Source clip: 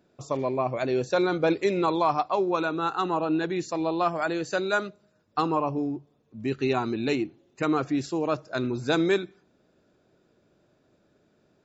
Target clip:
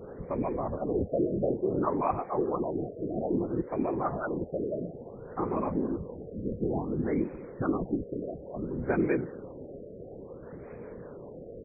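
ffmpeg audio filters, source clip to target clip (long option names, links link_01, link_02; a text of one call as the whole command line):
ffmpeg -i in.wav -filter_complex "[0:a]aeval=exprs='val(0)+0.5*0.0141*sgn(val(0))':channel_layout=same,aecho=1:1:282|564|846|1128|1410:0.0891|0.0517|0.03|0.0174|0.0101,asettb=1/sr,asplit=3[link_01][link_02][link_03];[link_01]atrim=end=7.954[link_04];[link_02]atrim=start=7.95:end=8.78,asetpts=PTS-STARTPTS,afade=type=in:duration=0.004:curve=qsin,afade=type=out:start_time=0.826:duration=0.004:curve=qsin,acompressor=threshold=-29dB:ratio=4[link_05];[link_03]atrim=start=8.776[link_06];[link_04][link_05]acrossfade=duration=0.004:curve1=hsin:curve2=qsin[link_07];[link_07][link_06]acrossfade=duration=0.004:curve1=qsin:curve2=hsin,aeval=exprs='val(0)+0.0126*sin(2*PI*470*n/s)':channel_layout=same,lowshelf=frequency=360:gain=8.5,afftfilt=real='hypot(re,im)*cos(2*PI*random(0))':imag='hypot(re,im)*sin(2*PI*random(1))':win_size=512:overlap=0.75,acrossover=split=410[link_08][link_09];[link_08]aeval=exprs='val(0)*(1-0.5/2+0.5/2*cos(2*PI*5*n/s))':channel_layout=same[link_10];[link_09]aeval=exprs='val(0)*(1-0.5/2-0.5/2*cos(2*PI*5*n/s))':channel_layout=same[link_11];[link_10][link_11]amix=inputs=2:normalize=0,equalizer=frequency=3900:width=7.1:gain=-12.5,afftfilt=real='re*lt(b*sr/1024,670*pow(2600/670,0.5+0.5*sin(2*PI*0.58*pts/sr)))':imag='im*lt(b*sr/1024,670*pow(2600/670,0.5+0.5*sin(2*PI*0.58*pts/sr)))':win_size=1024:overlap=0.75" out.wav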